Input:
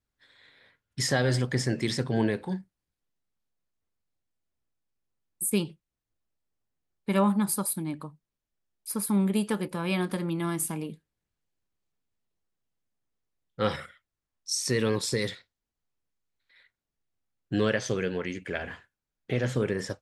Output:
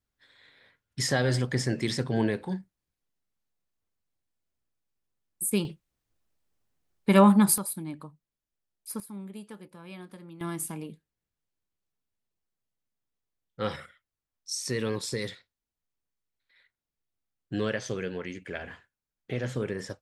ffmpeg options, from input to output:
-af "asetnsamples=n=441:p=0,asendcmd='5.65 volume volume 6dB;7.58 volume volume -4dB;9 volume volume -16dB;10.41 volume volume -4dB',volume=-0.5dB"

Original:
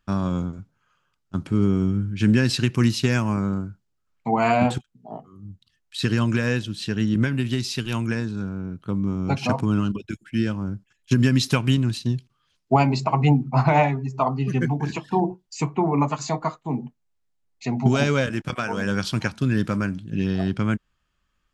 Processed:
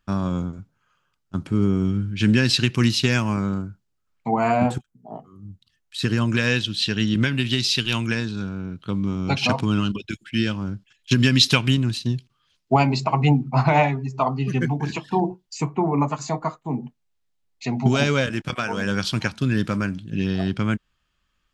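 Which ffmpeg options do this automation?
-af "asetnsamples=n=441:p=0,asendcmd='1.85 equalizer g 7.5;3.62 equalizer g 1;4.34 equalizer g -6.5;5.15 equalizer g 0.5;6.37 equalizer g 12;11.68 equalizer g 4;15.58 equalizer g -3.5;16.84 equalizer g 4.5',equalizer=f=3.5k:t=o:w=1.5:g=0.5"

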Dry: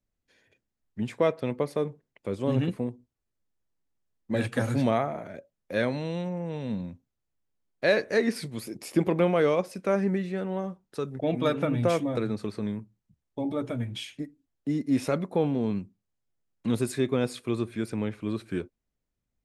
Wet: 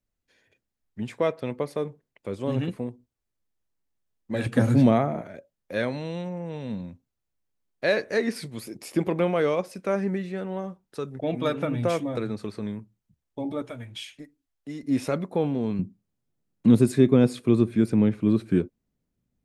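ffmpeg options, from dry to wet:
-af "asetnsamples=n=441:p=0,asendcmd='4.46 equalizer g 9;5.21 equalizer g -1;13.62 equalizer g -10.5;14.83 equalizer g 0.5;15.79 equalizer g 11.5',equalizer=f=190:t=o:w=2.5:g=-1.5"

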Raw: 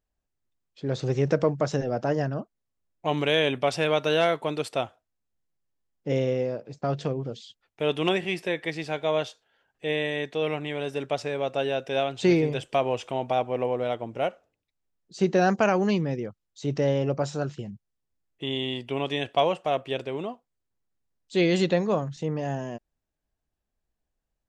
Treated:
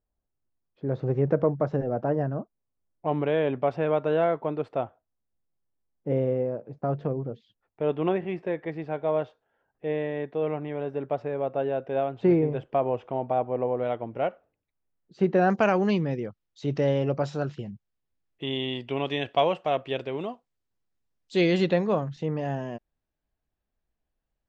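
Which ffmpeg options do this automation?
-af "asetnsamples=n=441:p=0,asendcmd='13.77 lowpass f 2000;15.5 lowpass f 4100;20.21 lowpass f 6500;21.51 lowpass f 3700',lowpass=1.2k"

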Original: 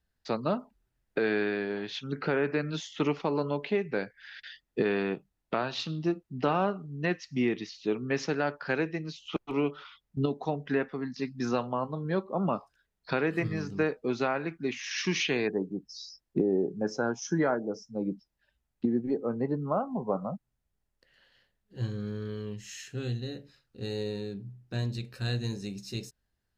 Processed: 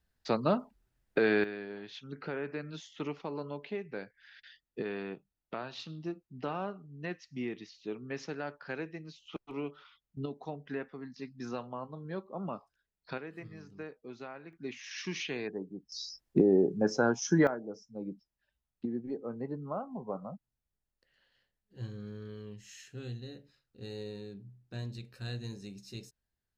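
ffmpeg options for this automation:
-af "asetnsamples=n=441:p=0,asendcmd='1.44 volume volume -9.5dB;13.18 volume volume -16dB;14.53 volume volume -8.5dB;15.92 volume volume 2.5dB;17.47 volume volume -8dB',volume=1dB"

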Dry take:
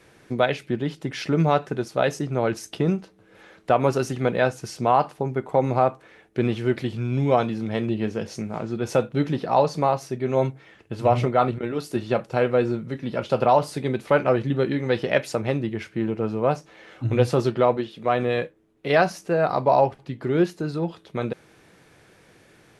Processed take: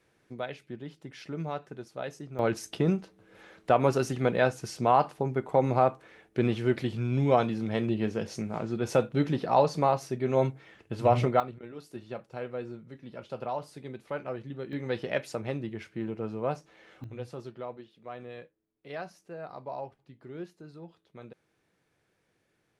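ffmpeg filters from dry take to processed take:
-af "asetnsamples=n=441:p=0,asendcmd='2.39 volume volume -3.5dB;11.4 volume volume -16dB;14.73 volume volume -9dB;17.04 volume volume -20dB',volume=-15dB"

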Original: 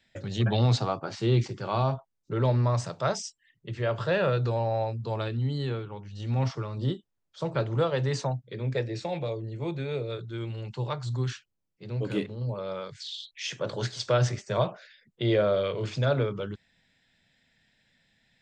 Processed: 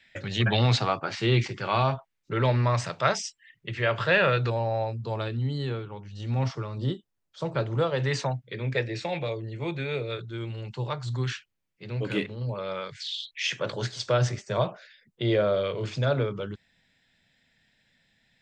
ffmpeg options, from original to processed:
-af "asetnsamples=n=441:p=0,asendcmd='4.5 equalizer g 1.5;8 equalizer g 9;10.22 equalizer g 2.5;11.08 equalizer g 8.5;13.72 equalizer g 1',equalizer=f=2.2k:t=o:w=1.6:g=12"

